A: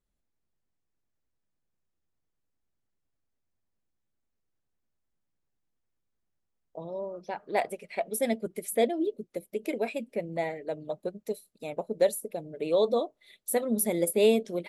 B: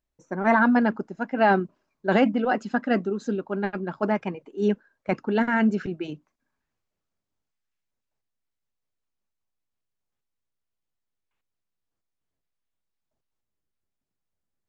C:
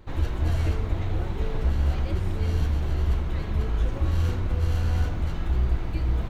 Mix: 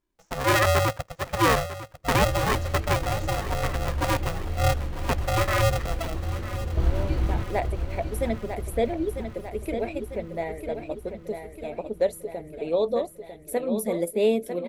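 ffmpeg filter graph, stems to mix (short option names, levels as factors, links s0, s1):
-filter_complex "[0:a]highshelf=f=3500:g=-8,volume=1.06,asplit=3[s0][s1][s2];[s1]volume=0.398[s3];[1:a]aeval=exprs='val(0)*sgn(sin(2*PI*330*n/s))':c=same,volume=0.841,asplit=2[s4][s5];[s5]volume=0.2[s6];[2:a]equalizer=f=330:t=o:w=0.24:g=6.5,adelay=1150,volume=1.06,asplit=2[s7][s8];[s8]volume=0.398[s9];[s2]apad=whole_len=328232[s10];[s7][s10]sidechaingate=range=0.00794:threshold=0.00398:ratio=16:detection=peak[s11];[s3][s6][s9]amix=inputs=3:normalize=0,aecho=0:1:948|1896|2844|3792|4740|5688|6636|7584:1|0.56|0.314|0.176|0.0983|0.0551|0.0308|0.0173[s12];[s0][s4][s11][s12]amix=inputs=4:normalize=0"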